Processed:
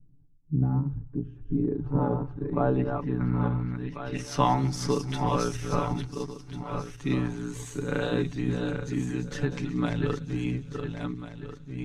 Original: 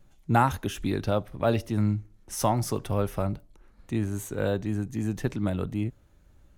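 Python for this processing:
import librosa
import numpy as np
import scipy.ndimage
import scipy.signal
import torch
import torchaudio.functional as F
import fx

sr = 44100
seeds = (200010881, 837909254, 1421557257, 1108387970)

p1 = fx.reverse_delay_fb(x, sr, ms=387, feedback_pct=46, wet_db=-6)
p2 = fx.peak_eq(p1, sr, hz=620.0, db=-12.5, octaves=0.36)
p3 = fx.hum_notches(p2, sr, base_hz=50, count=3)
p4 = fx.hpss(p3, sr, part='percussive', gain_db=6)
p5 = fx.stretch_grains(p4, sr, factor=1.8, grain_ms=31.0)
p6 = fx.filter_sweep_lowpass(p5, sr, from_hz=220.0, to_hz=5000.0, start_s=0.97, end_s=4.8, q=0.89)
p7 = p6 + fx.echo_wet_highpass(p6, sr, ms=184, feedback_pct=64, hz=4100.0, wet_db=-13.5, dry=0)
y = fx.end_taper(p7, sr, db_per_s=170.0)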